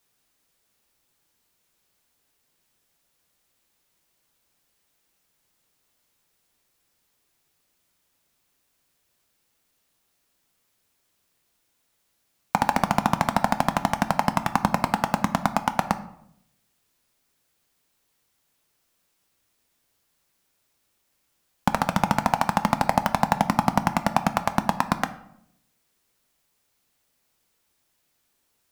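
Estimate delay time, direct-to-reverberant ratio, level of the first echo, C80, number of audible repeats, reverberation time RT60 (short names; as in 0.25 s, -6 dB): none, 10.0 dB, none, 17.0 dB, none, 0.75 s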